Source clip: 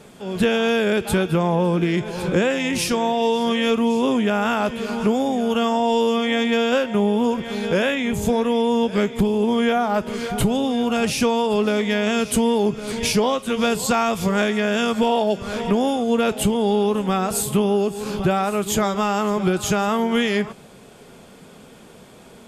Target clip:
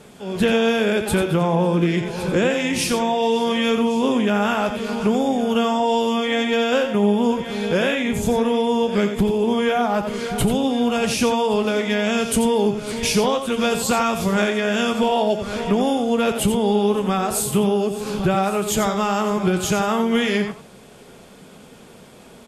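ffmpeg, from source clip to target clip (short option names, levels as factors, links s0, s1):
-af "aecho=1:1:88:0.376" -ar 32000 -c:a libvorbis -b:a 48k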